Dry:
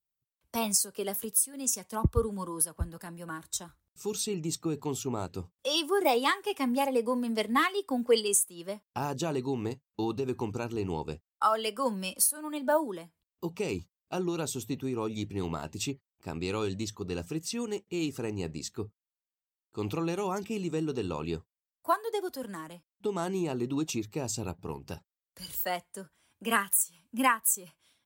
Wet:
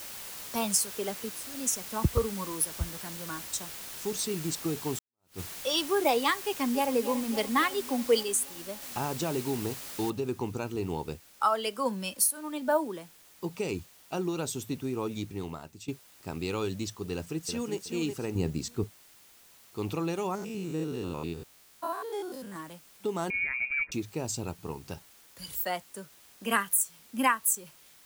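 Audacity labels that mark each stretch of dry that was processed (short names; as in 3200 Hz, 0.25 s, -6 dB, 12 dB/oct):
0.980000	1.590000	LPF 3800 Hz
2.090000	4.180000	Doppler distortion depth 0.22 ms
4.990000	5.400000	fade in exponential
6.360000	6.890000	echo throw 0.28 s, feedback 75%, level -12 dB
8.230000	8.820000	gain -3 dB
10.100000	10.100000	noise floor step -42 dB -57 dB
15.130000	15.880000	fade out, to -16 dB
17.110000	17.760000	echo throw 0.37 s, feedback 25%, level -7 dB
18.350000	18.840000	low shelf 370 Hz +8.5 dB
20.350000	22.560000	stepped spectrum every 0.1 s
23.300000	23.920000	inverted band carrier 2600 Hz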